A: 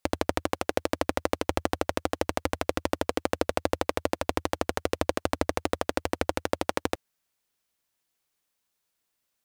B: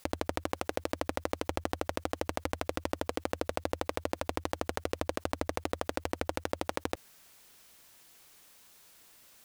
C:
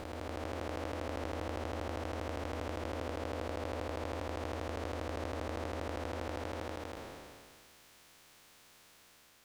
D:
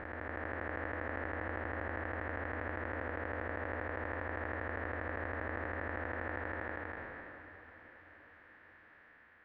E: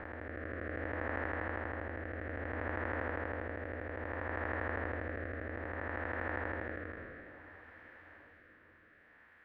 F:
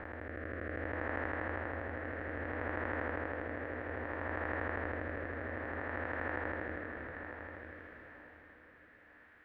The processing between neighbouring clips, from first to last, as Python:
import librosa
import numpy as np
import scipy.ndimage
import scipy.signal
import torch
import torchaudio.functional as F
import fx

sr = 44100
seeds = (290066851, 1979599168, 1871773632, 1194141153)

y1 = fx.env_flatten(x, sr, amount_pct=50)
y1 = y1 * librosa.db_to_amplitude(-7.5)
y2 = fx.spec_blur(y1, sr, span_ms=776.0)
y2 = fx.high_shelf(y2, sr, hz=7200.0, db=-11.0)
y2 = y2 * librosa.db_to_amplitude(4.5)
y3 = fx.ladder_lowpass(y2, sr, hz=1900.0, resonance_pct=75)
y3 = fx.echo_diffused(y3, sr, ms=679, feedback_pct=47, wet_db=-15.0)
y3 = y3 * librosa.db_to_amplitude(9.0)
y4 = fx.rotary(y3, sr, hz=0.6)
y4 = y4 * librosa.db_to_amplitude(2.5)
y5 = fx.echo_feedback(y4, sr, ms=953, feedback_pct=18, wet_db=-9)